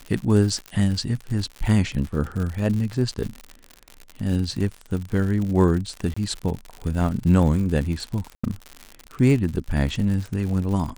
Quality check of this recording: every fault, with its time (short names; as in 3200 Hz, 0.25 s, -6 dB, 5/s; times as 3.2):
crackle 100/s -28 dBFS
0.66 pop -19 dBFS
6.14–6.17 gap 25 ms
8.35–8.44 gap 85 ms